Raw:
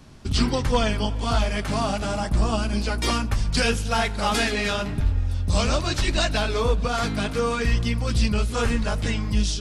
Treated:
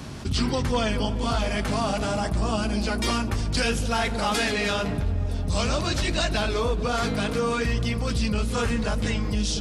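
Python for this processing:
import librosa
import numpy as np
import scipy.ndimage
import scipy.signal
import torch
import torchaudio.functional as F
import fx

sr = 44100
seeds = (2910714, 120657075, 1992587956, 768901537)

y = scipy.signal.sosfilt(scipy.signal.butter(2, 51.0, 'highpass', fs=sr, output='sos'), x)
y = fx.echo_wet_lowpass(y, sr, ms=234, feedback_pct=72, hz=540.0, wet_db=-9.5)
y = fx.env_flatten(y, sr, amount_pct=50)
y = y * 10.0 ** (-4.0 / 20.0)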